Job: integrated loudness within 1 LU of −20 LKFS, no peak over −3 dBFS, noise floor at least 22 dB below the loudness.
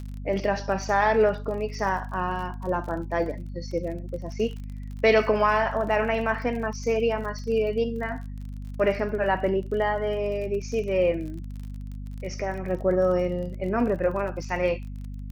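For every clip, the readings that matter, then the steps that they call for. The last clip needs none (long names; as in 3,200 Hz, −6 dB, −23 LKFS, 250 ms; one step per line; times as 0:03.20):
crackle rate 35 per second; mains hum 50 Hz; hum harmonics up to 250 Hz; level of the hum −33 dBFS; integrated loudness −26.0 LKFS; sample peak −8.5 dBFS; target loudness −20.0 LKFS
→ click removal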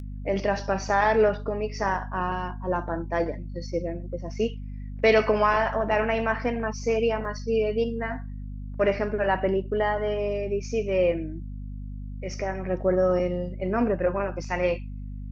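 crackle rate 0.13 per second; mains hum 50 Hz; hum harmonics up to 250 Hz; level of the hum −33 dBFS
→ hum removal 50 Hz, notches 5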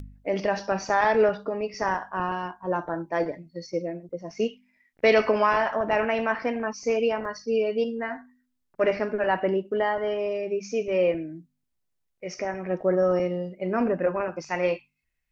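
mains hum none found; integrated loudness −26.5 LKFS; sample peak −8.5 dBFS; target loudness −20.0 LKFS
→ level +6.5 dB
brickwall limiter −3 dBFS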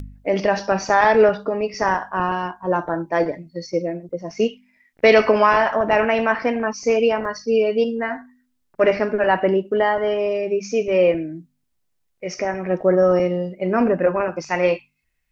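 integrated loudness −20.0 LKFS; sample peak −3.0 dBFS; background noise floor −70 dBFS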